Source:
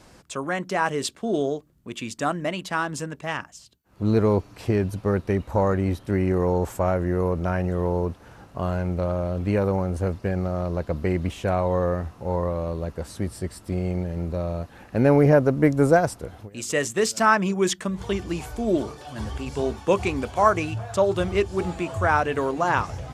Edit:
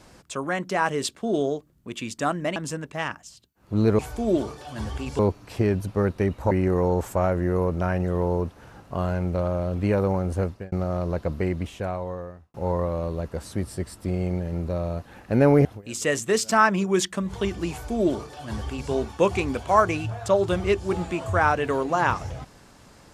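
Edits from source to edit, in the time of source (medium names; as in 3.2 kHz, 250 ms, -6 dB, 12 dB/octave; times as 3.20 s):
2.56–2.85 s: delete
5.60–6.15 s: delete
10.07–10.36 s: fade out
10.87–12.18 s: fade out
15.29–16.33 s: delete
18.39–19.59 s: copy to 4.28 s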